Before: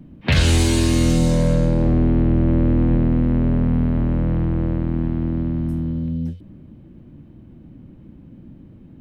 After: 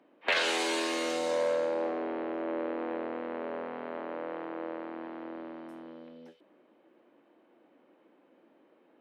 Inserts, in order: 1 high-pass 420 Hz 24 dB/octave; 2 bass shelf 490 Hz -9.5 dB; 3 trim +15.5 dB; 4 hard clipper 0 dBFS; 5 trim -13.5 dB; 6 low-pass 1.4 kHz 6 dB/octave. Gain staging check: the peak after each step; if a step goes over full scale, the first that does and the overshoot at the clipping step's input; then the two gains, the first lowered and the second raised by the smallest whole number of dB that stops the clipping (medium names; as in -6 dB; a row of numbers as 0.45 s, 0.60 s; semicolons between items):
-10.0 dBFS, -12.0 dBFS, +3.5 dBFS, 0.0 dBFS, -13.5 dBFS, -14.5 dBFS; step 3, 3.5 dB; step 3 +11.5 dB, step 5 -9.5 dB